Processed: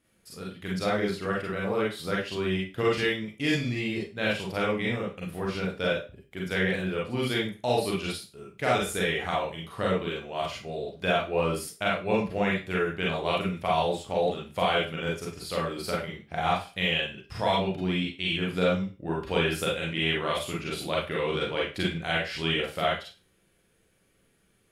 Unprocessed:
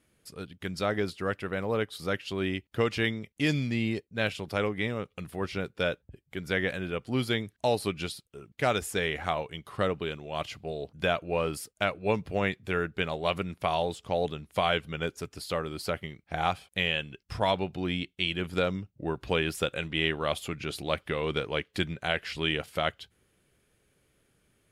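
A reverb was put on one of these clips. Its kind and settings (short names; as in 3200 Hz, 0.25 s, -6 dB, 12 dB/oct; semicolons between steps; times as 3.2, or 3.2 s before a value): Schroeder reverb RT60 0.31 s, combs from 33 ms, DRR -4.5 dB; gain -3.5 dB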